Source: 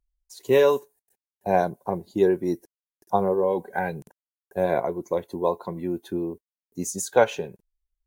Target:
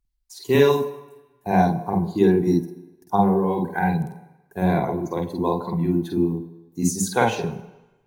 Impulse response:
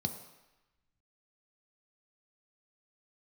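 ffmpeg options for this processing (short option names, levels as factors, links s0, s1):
-filter_complex "[0:a]equalizer=f=560:t=o:w=0.41:g=-14,asplit=2[s0][s1];[1:a]atrim=start_sample=2205,adelay=48[s2];[s1][s2]afir=irnorm=-1:irlink=0,volume=0.562[s3];[s0][s3]amix=inputs=2:normalize=0,volume=1.33"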